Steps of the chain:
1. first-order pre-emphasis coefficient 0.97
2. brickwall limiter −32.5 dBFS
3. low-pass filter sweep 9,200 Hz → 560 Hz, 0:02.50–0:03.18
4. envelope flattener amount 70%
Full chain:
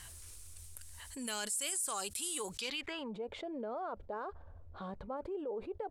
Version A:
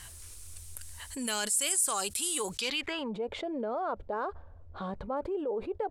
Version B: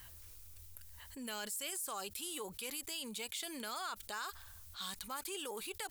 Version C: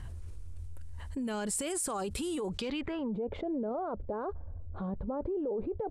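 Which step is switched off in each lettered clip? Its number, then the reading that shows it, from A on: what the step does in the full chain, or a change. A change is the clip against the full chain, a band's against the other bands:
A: 2, change in momentary loudness spread +2 LU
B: 3, 4 kHz band +4.5 dB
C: 1, 125 Hz band +11.0 dB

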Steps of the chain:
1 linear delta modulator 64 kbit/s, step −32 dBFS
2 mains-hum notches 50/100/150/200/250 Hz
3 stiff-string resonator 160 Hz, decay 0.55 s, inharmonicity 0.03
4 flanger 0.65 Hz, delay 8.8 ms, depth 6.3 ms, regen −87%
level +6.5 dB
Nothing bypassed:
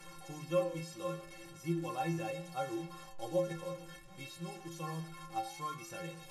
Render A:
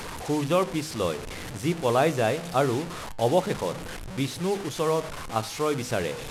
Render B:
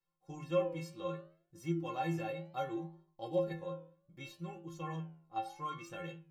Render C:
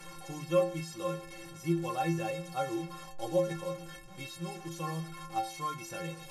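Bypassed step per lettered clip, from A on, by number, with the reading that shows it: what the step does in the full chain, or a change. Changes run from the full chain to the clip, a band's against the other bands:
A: 3, 4 kHz band +2.5 dB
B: 1, 8 kHz band −9.0 dB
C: 4, change in integrated loudness +4.5 LU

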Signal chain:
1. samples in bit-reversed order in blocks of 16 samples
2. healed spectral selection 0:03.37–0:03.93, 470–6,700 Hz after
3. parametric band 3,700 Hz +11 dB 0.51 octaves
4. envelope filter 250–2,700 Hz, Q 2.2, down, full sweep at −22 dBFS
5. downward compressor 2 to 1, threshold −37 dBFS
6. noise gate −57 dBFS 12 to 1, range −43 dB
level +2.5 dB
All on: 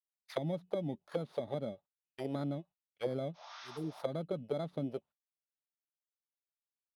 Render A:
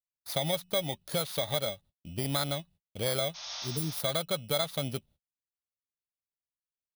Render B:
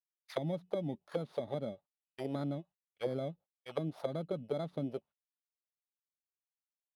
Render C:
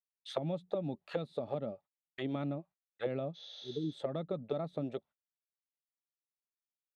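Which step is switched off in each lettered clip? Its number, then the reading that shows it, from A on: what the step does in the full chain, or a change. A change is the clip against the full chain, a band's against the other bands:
4, 4 kHz band +14.5 dB
2, change in momentary loudness spread −2 LU
1, 4 kHz band +3.0 dB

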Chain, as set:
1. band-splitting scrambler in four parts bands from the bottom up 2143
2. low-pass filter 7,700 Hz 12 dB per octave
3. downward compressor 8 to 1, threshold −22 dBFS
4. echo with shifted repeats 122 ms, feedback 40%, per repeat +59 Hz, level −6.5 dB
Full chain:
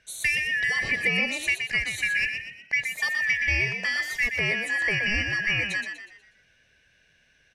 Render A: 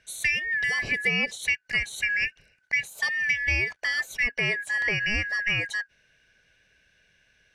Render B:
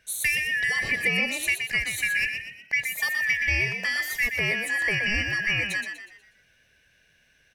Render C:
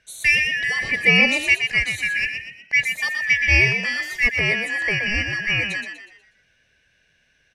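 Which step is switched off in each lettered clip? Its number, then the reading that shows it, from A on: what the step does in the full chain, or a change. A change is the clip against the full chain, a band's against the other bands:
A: 4, echo-to-direct ratio −5.5 dB to none audible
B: 2, 8 kHz band +4.0 dB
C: 3, average gain reduction 3.5 dB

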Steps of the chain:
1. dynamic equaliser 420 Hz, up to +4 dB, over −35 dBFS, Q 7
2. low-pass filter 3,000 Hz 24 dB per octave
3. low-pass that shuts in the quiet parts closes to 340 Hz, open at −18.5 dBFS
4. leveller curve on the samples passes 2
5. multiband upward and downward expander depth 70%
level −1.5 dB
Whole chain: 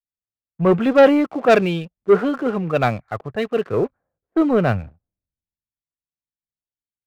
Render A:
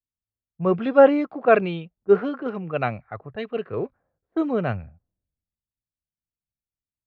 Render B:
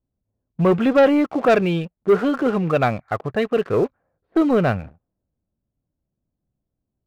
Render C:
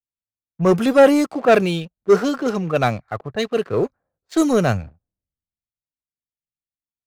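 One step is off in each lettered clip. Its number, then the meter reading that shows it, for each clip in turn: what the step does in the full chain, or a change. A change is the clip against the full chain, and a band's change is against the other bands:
4, change in crest factor +3.5 dB
5, change in crest factor −5.0 dB
2, 4 kHz band +3.0 dB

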